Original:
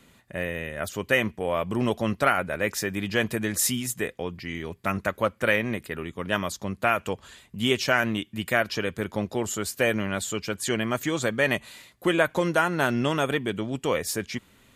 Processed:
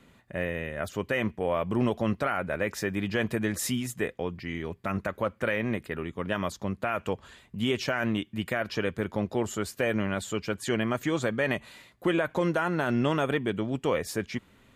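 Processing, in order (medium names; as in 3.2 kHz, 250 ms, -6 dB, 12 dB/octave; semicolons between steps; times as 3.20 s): treble shelf 3.7 kHz -10 dB; peak limiter -16 dBFS, peak gain reduction 9 dB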